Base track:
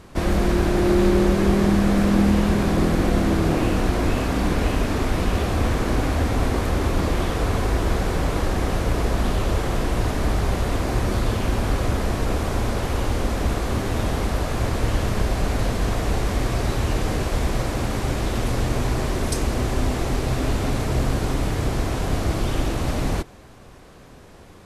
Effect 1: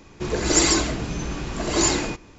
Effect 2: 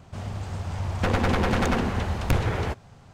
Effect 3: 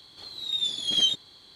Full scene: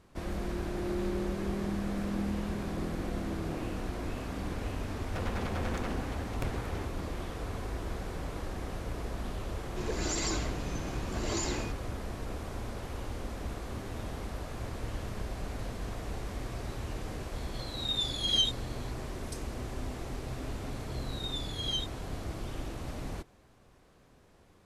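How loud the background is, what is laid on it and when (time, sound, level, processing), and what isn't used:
base track -15.5 dB
4.12 add 2 -13.5 dB
9.56 add 1 -10.5 dB + limiter -13 dBFS
17.36 add 3 -4.5 dB
20.71 add 3 -11.5 dB

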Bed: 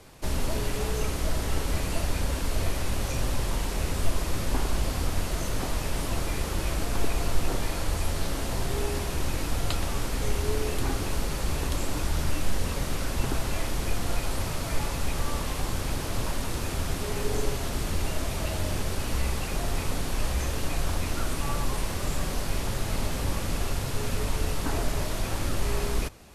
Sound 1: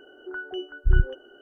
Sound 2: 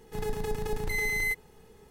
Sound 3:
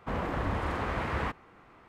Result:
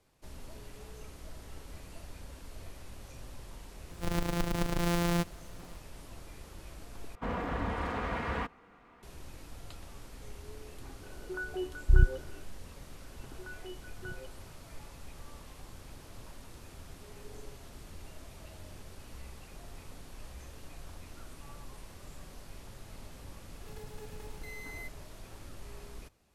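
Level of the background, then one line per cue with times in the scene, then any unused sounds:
bed -19.5 dB
3.89 add 2 + sample sorter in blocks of 256 samples
7.15 replace with 3 -3 dB + comb 4.2 ms, depth 39%
11.03 add 1 -2.5 dB + LPF 1900 Hz
13.12 add 1 -12.5 dB + HPF 170 Hz
23.54 add 2 -17 dB + three-band squash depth 40%

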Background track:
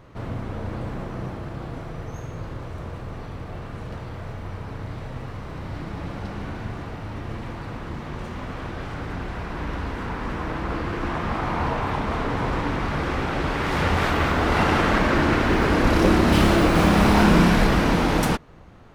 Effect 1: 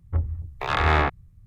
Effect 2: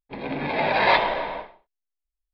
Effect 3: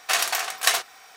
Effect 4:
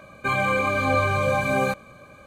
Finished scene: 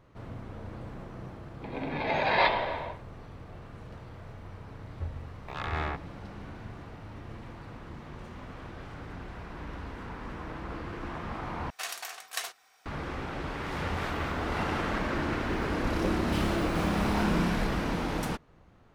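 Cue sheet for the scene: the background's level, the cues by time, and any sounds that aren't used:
background track -11 dB
1.51 add 2 -5.5 dB + mismatched tape noise reduction decoder only
4.87 add 1 -12.5 dB
11.7 replace with 3 -14.5 dB
not used: 4

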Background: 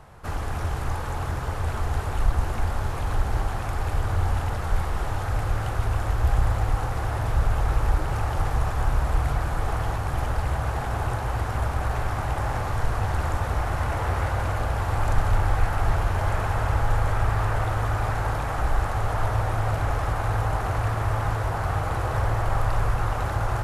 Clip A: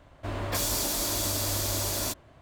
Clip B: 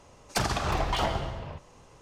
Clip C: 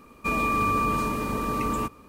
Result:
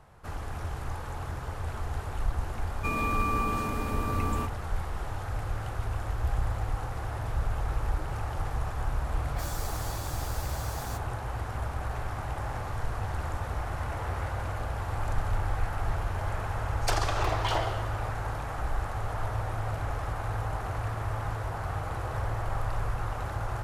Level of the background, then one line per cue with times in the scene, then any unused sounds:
background -7.5 dB
2.59 add C -5.5 dB
8.84 add A -10.5 dB + endless flanger 11.9 ms +1.8 Hz
16.52 add B -1 dB + elliptic high-pass 310 Hz

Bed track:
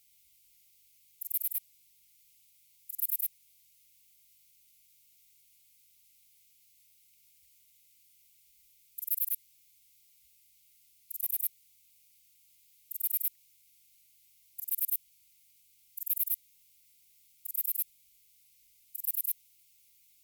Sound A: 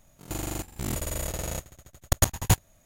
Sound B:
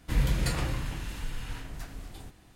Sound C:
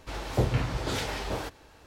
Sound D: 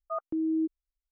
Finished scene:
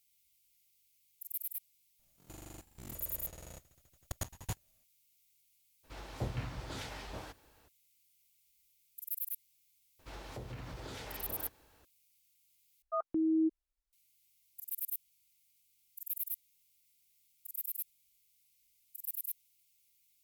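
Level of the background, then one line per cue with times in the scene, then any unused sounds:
bed track -7.5 dB
1.99 add A -18 dB
5.83 add C -11.5 dB, fades 0.02 s + dynamic EQ 430 Hz, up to -5 dB, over -43 dBFS, Q 2.3
9.99 add C -11.5 dB + compressor, threshold -29 dBFS
12.82 replace with D -1.5 dB
not used: B

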